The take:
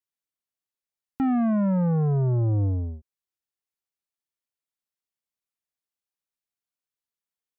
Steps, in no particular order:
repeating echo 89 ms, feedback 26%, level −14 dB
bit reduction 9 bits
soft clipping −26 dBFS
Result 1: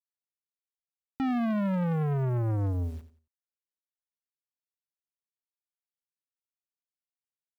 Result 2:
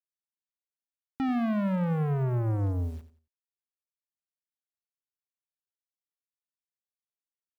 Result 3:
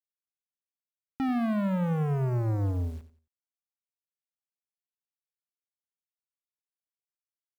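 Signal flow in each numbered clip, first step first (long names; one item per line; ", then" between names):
bit reduction, then repeating echo, then soft clipping
bit reduction, then soft clipping, then repeating echo
soft clipping, then bit reduction, then repeating echo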